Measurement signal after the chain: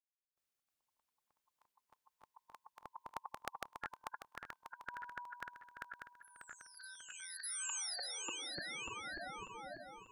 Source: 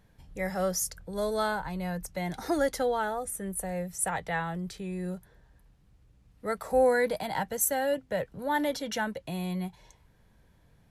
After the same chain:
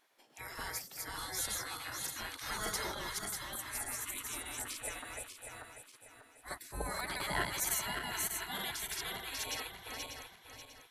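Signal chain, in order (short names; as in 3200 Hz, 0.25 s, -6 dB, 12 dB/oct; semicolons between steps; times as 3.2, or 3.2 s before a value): regenerating reverse delay 0.296 s, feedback 60%, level -1 dB; spectral gate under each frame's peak -20 dB weak; gain +1 dB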